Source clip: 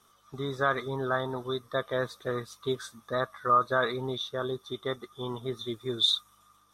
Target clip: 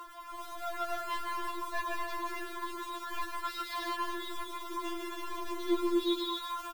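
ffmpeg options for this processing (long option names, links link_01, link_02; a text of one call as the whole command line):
ffmpeg -i in.wav -af "aeval=exprs='val(0)+0.5*0.0106*sgn(val(0))':channel_layout=same,lowpass=2300,aecho=1:1:150|247.5|310.9|352.1|378.8:0.631|0.398|0.251|0.158|0.1,dynaudnorm=framelen=560:gausssize=3:maxgain=16dB,equalizer=frequency=1100:width=4.5:gain=12.5,bandreject=frequency=60:width_type=h:width=6,bandreject=frequency=120:width_type=h:width=6,bandreject=frequency=180:width_type=h:width=6,bandreject=frequency=240:width_type=h:width=6,bandreject=frequency=300:width_type=h:width=6,bandreject=frequency=360:width_type=h:width=6,bandreject=frequency=420:width_type=h:width=6,aresample=11025,asoftclip=type=hard:threshold=-13.5dB,aresample=44100,aphaser=in_gain=1:out_gain=1:delay=2.2:decay=0.32:speed=1.8:type=sinusoidal,alimiter=limit=-18.5dB:level=0:latency=1:release=55,acompressor=threshold=-29dB:ratio=2.5,acrusher=bits=4:mode=log:mix=0:aa=0.000001,afftfilt=real='re*4*eq(mod(b,16),0)':imag='im*4*eq(mod(b,16),0)':win_size=2048:overlap=0.75,volume=-1.5dB" out.wav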